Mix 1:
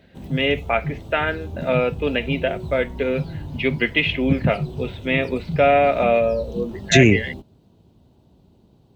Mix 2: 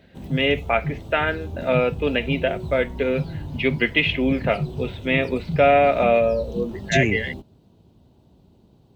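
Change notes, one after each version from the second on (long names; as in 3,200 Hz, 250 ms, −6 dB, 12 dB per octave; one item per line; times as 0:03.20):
second voice −8.5 dB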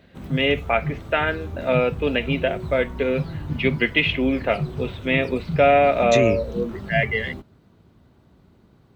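second voice: entry −0.80 s
background: add flat-topped bell 1,600 Hz +11.5 dB 1.2 octaves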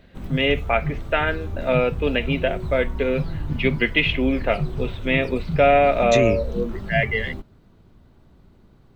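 master: remove high-pass filter 72 Hz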